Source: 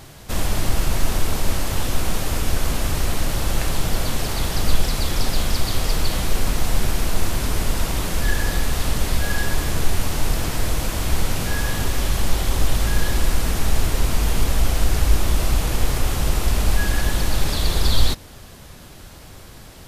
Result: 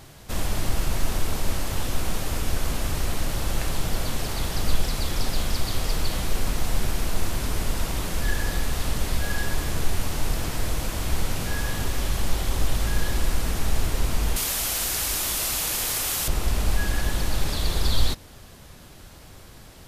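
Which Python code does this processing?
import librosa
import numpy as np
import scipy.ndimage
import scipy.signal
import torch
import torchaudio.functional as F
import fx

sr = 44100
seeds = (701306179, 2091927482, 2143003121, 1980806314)

y = fx.tilt_eq(x, sr, slope=3.5, at=(14.36, 16.28))
y = y * 10.0 ** (-4.5 / 20.0)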